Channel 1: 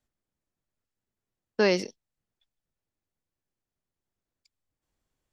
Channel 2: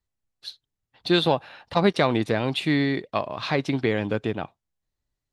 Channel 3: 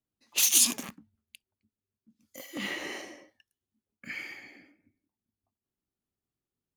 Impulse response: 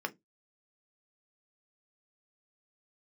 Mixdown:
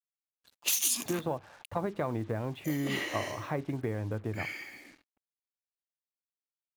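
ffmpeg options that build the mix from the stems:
-filter_complex "[1:a]lowpass=1.4k,equalizer=f=100:w=3.3:g=13.5,acompressor=threshold=-22dB:ratio=4,volume=-8.5dB,asplit=2[a][b];[b]volume=-12dB[c];[2:a]acompressor=threshold=-26dB:ratio=12,adelay=300,volume=-1dB,asplit=2[d][e];[e]volume=-20.5dB[f];[3:a]atrim=start_sample=2205[g];[c][f]amix=inputs=2:normalize=0[h];[h][g]afir=irnorm=-1:irlink=0[i];[a][d][i]amix=inputs=3:normalize=0,highshelf=f=9.2k:g=4.5,acrusher=bits=8:mix=0:aa=0.5"

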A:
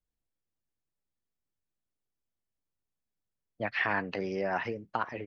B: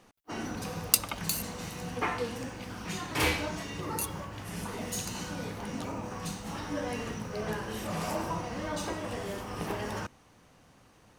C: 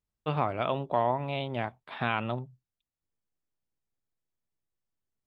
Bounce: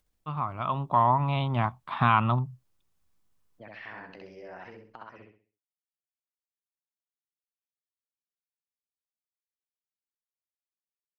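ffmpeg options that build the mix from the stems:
-filter_complex "[0:a]acompressor=mode=upward:threshold=-50dB:ratio=2.5,volume=-10.5dB,asplit=2[a][b];[b]volume=-5.5dB[c];[2:a]firequalizer=gain_entry='entry(130,0);entry(470,-16);entry(1100,5);entry(1600,-9)':delay=0.05:min_phase=1,dynaudnorm=f=230:g=7:m=14dB,volume=-3dB[d];[a]acompressor=threshold=-46dB:ratio=2.5,volume=0dB[e];[c]aecho=0:1:65|130|195|260|325:1|0.35|0.122|0.0429|0.015[f];[d][e][f]amix=inputs=3:normalize=0"

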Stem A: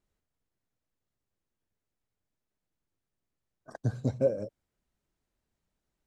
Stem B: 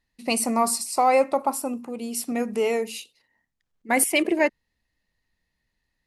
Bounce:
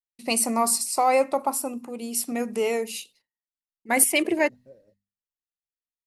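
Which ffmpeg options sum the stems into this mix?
-filter_complex "[0:a]adelay=450,volume=-16.5dB[a];[1:a]highshelf=f=5.4k:g=6,volume=-1.5dB,asplit=2[b][c];[c]apad=whole_len=287128[d];[a][d]sidechaincompress=threshold=-30dB:ratio=10:attack=33:release=647[e];[e][b]amix=inputs=2:normalize=0,agate=range=-33dB:threshold=-51dB:ratio=3:detection=peak,bandreject=f=50:t=h:w=6,bandreject=f=100:t=h:w=6,bandreject=f=150:t=h:w=6,bandreject=f=200:t=h:w=6,bandreject=f=250:t=h:w=6"

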